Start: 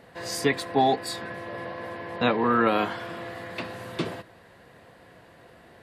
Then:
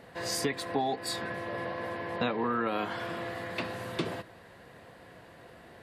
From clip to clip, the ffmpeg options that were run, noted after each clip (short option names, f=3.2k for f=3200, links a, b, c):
-af "acompressor=threshold=-27dB:ratio=6"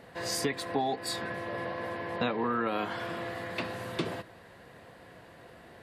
-af anull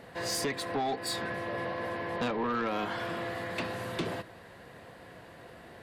-af "asoftclip=type=tanh:threshold=-27.5dB,volume=2dB"